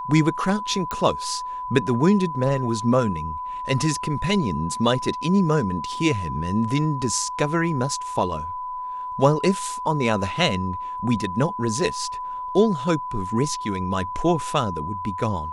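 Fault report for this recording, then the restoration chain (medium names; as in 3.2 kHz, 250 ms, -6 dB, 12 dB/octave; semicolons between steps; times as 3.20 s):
whine 1 kHz -28 dBFS
0.91 s: pop -12 dBFS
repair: de-click; band-stop 1 kHz, Q 30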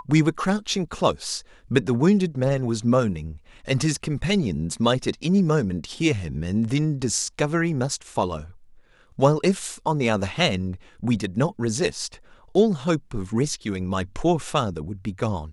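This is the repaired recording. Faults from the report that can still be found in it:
nothing left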